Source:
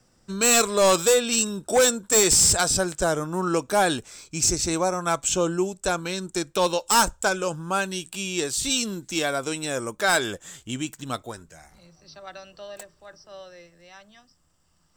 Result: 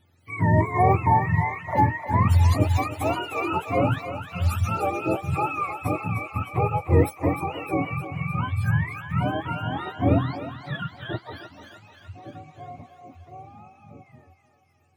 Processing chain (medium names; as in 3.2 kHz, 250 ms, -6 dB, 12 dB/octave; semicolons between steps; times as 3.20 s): spectrum inverted on a logarithmic axis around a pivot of 660 Hz; thinning echo 306 ms, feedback 65%, high-pass 570 Hz, level -8 dB